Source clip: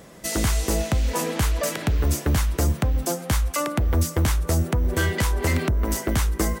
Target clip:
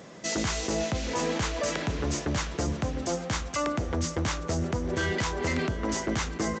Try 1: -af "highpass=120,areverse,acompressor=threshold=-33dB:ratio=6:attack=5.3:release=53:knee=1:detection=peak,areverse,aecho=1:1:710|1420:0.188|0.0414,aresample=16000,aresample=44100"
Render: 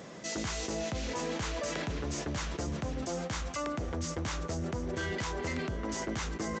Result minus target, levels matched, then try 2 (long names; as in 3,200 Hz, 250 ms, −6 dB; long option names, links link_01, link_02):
downward compressor: peak gain reduction +6.5 dB
-af "highpass=120,areverse,acompressor=threshold=-25dB:ratio=6:attack=5.3:release=53:knee=1:detection=peak,areverse,aecho=1:1:710|1420:0.188|0.0414,aresample=16000,aresample=44100"